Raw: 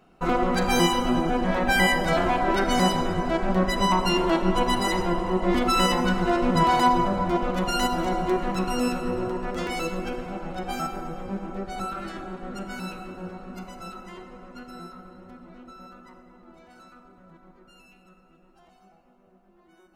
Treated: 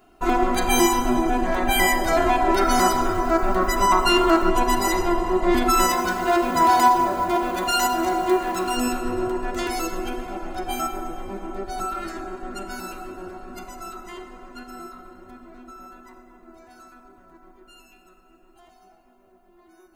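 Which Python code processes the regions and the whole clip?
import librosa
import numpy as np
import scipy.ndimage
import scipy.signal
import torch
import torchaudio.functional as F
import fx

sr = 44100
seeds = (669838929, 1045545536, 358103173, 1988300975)

y = fx.chain(x, sr, fx.peak_eq(hz=1300.0, db=9.5, octaves=0.34),
    fx.sample_gate(floor_db=-47.0), at=(2.61, 4.49))
y = fx.chain(y, sr, fx.law_mismatch(coded='mu'),
    fx.highpass(hz=120.0, slope=6),
    fx.hum_notches(base_hz=50, count=10), at=(5.89, 8.77))
y = fx.high_shelf(y, sr, hz=8200.0, db=11.0)
y = fx.notch(y, sr, hz=5500.0, q=12.0)
y = y + 0.79 * np.pad(y, (int(2.9 * sr / 1000.0), 0))[:len(y)]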